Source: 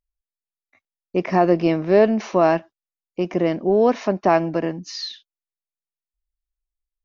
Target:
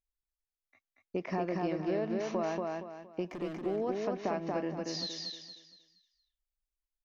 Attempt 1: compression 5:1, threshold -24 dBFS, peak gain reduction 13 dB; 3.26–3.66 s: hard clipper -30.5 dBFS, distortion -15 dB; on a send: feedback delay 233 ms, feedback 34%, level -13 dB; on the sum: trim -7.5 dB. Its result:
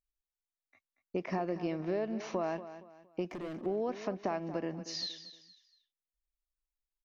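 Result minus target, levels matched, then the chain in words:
echo-to-direct -10.5 dB
compression 5:1, threshold -24 dBFS, peak gain reduction 13 dB; 3.26–3.66 s: hard clipper -30.5 dBFS, distortion -15 dB; on a send: feedback delay 233 ms, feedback 34%, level -2.5 dB; on the sum: trim -7.5 dB

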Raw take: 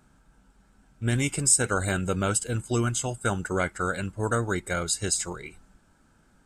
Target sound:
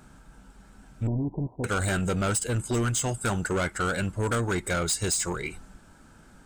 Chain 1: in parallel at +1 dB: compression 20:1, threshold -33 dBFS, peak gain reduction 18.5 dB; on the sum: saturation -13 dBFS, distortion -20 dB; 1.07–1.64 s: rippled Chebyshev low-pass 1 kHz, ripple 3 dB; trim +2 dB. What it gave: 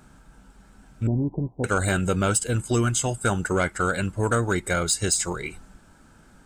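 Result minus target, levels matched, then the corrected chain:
saturation: distortion -11 dB
in parallel at +1 dB: compression 20:1, threshold -33 dBFS, peak gain reduction 18.5 dB; on the sum: saturation -23.5 dBFS, distortion -9 dB; 1.07–1.64 s: rippled Chebyshev low-pass 1 kHz, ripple 3 dB; trim +2 dB

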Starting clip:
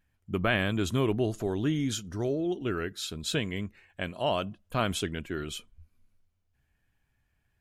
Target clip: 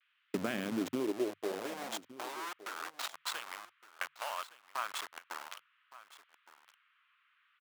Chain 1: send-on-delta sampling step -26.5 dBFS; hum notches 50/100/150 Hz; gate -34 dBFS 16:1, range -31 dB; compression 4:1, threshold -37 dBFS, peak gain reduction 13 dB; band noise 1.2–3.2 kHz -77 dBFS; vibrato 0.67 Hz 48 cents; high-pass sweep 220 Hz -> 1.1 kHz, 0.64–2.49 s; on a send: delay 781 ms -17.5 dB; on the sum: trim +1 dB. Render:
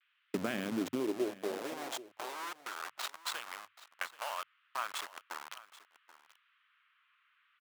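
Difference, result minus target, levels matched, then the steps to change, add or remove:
echo 384 ms early
change: delay 1165 ms -17.5 dB

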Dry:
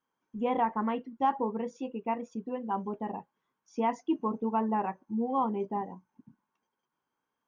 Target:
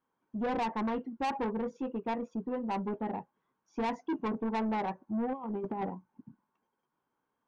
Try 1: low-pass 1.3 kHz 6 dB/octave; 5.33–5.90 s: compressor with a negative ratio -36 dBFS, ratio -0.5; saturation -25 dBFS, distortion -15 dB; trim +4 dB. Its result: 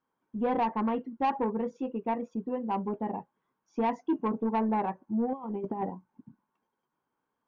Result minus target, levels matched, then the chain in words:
saturation: distortion -7 dB
low-pass 1.3 kHz 6 dB/octave; 5.33–5.90 s: compressor with a negative ratio -36 dBFS, ratio -0.5; saturation -32.5 dBFS, distortion -8 dB; trim +4 dB

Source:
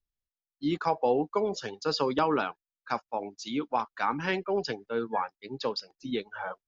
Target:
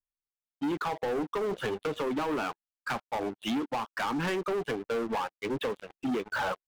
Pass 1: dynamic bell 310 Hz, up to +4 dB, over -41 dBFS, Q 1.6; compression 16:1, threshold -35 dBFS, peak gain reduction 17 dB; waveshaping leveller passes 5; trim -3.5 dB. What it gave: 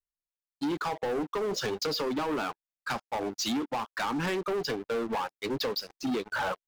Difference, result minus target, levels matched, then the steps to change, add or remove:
4 kHz band +5.0 dB
add after dynamic bell: steep low-pass 3.4 kHz 96 dB/octave

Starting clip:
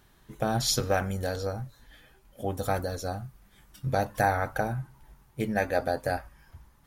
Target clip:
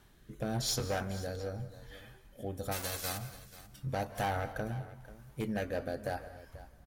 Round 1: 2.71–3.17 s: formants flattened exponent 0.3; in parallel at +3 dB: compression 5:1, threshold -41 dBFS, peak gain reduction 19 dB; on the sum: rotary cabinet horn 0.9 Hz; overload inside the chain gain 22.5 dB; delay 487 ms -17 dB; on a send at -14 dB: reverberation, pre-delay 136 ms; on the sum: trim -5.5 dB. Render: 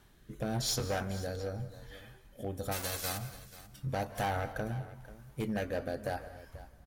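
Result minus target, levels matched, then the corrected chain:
compression: peak gain reduction -5 dB
2.71–3.17 s: formants flattened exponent 0.3; in parallel at +3 dB: compression 5:1, threshold -47.5 dBFS, peak gain reduction 24 dB; on the sum: rotary cabinet horn 0.9 Hz; overload inside the chain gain 22.5 dB; delay 487 ms -17 dB; on a send at -14 dB: reverberation, pre-delay 136 ms; on the sum: trim -5.5 dB

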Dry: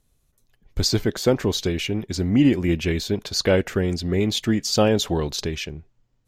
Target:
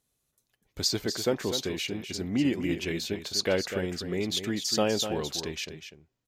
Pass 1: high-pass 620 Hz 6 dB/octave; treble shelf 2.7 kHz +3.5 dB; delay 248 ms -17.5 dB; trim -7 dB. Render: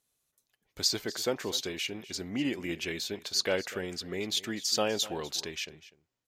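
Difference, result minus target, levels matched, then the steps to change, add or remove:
echo-to-direct -8.5 dB; 250 Hz band -3.5 dB
change: high-pass 220 Hz 6 dB/octave; change: delay 248 ms -9 dB

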